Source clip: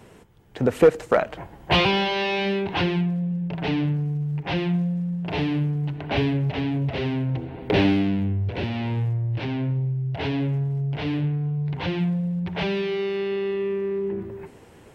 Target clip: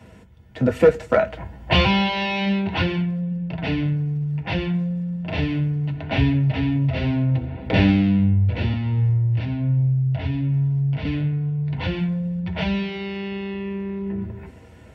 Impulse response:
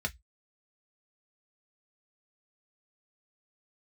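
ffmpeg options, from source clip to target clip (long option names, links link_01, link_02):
-filter_complex "[0:a]asettb=1/sr,asplit=3[link_01][link_02][link_03];[link_01]atrim=end=8.734[link_04];[link_02]atrim=start=8.73:end=11.05,asetpts=PTS-STARTPTS,afade=type=in:duration=0.004:curve=qsin,afade=type=out:start_time=2.316:duration=0.004:curve=qsin,acrossover=split=210[link_05][link_06];[link_06]acompressor=threshold=-36dB:ratio=3[link_07];[link_05][link_07]amix=inputs=2:normalize=0[link_08];[link_03]atrim=start=11.046[link_09];[link_04][link_08]acrossfade=duration=0.004:curve1=hsin:curve2=qsin[link_10];[link_10][link_09]acrossfade=duration=0.004:curve1=qsin:curve2=hsin[link_11];[1:a]atrim=start_sample=2205[link_12];[link_11][link_12]afir=irnorm=-1:irlink=0,volume=-3dB"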